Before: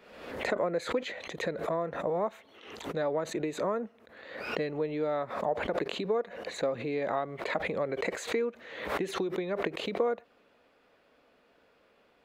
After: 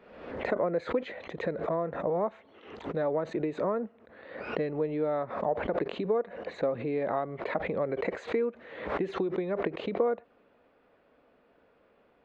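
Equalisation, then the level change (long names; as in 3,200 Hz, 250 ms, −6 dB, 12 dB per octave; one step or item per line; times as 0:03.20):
head-to-tape spacing loss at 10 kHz 31 dB
+3.0 dB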